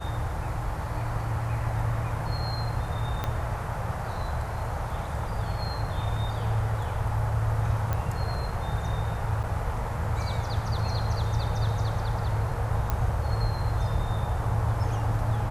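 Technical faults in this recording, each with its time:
3.24 s: pop -15 dBFS
7.93 s: pop -16 dBFS
9.43–9.44 s: dropout 7.4 ms
12.90 s: pop -14 dBFS

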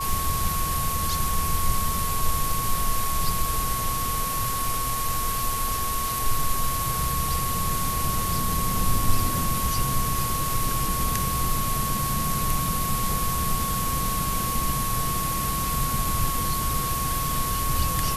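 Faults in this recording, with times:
whine 1.1 kHz -28 dBFS

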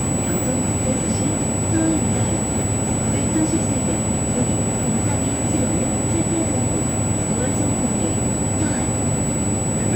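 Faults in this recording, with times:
whine 7.9 kHz -25 dBFS

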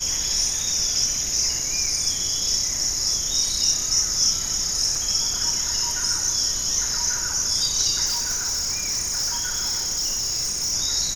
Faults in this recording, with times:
1.86 s: dropout 3.5 ms
4.95 s: dropout 2.8 ms
8.05–10.74 s: clipped -21 dBFS

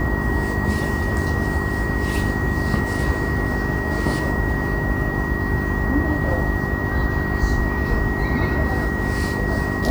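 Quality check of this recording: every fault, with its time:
hum 50 Hz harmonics 8 -26 dBFS
whine 1.9 kHz -27 dBFS

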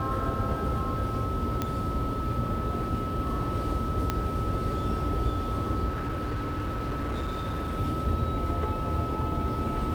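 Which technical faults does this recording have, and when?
whine 1.3 kHz -34 dBFS
1.62 s: pop -14 dBFS
4.10 s: pop -12 dBFS
5.88–7.79 s: clipped -27.5 dBFS

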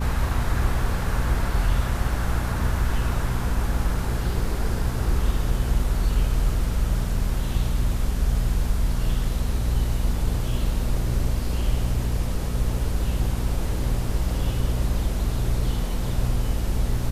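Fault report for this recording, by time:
hum 60 Hz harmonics 4 -27 dBFS

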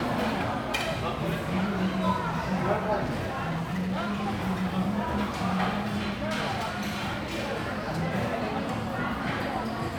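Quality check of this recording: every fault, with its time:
3.04–4.47 s: clipped -26 dBFS
6.47–7.58 s: clipped -26.5 dBFS

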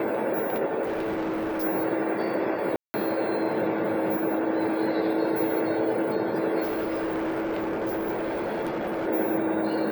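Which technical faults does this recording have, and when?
0.82–1.64 s: clipped -25.5 dBFS
2.76–2.94 s: dropout 180 ms
6.62–9.08 s: clipped -25 dBFS

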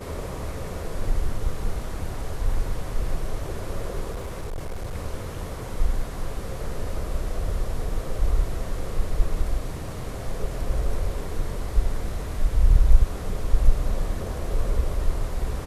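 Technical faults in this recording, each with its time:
4.11–4.95 s: clipped -27 dBFS

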